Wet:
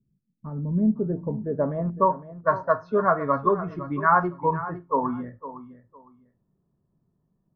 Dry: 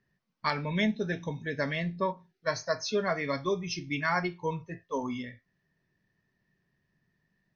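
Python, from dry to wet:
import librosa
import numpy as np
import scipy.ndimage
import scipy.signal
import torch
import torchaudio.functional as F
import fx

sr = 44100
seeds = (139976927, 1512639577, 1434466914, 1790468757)

y = fx.rattle_buzz(x, sr, strikes_db=-33.0, level_db=-36.0)
y = fx.env_lowpass(y, sr, base_hz=500.0, full_db=-27.0)
y = fx.high_shelf_res(y, sr, hz=1700.0, db=-11.0, q=3.0)
y = fx.filter_sweep_lowpass(y, sr, from_hz=220.0, to_hz=1500.0, start_s=0.6, end_s=2.45, q=1.2)
y = fx.echo_feedback(y, sr, ms=508, feedback_pct=22, wet_db=-14)
y = y * librosa.db_to_amplitude(5.0)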